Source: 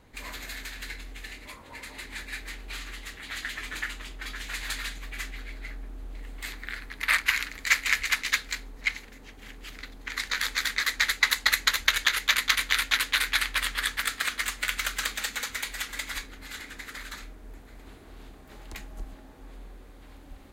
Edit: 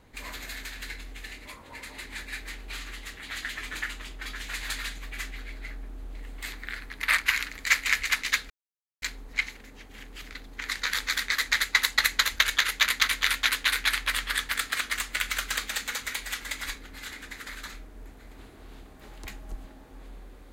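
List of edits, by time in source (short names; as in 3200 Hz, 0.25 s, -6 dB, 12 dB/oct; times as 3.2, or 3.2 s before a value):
8.5 insert silence 0.52 s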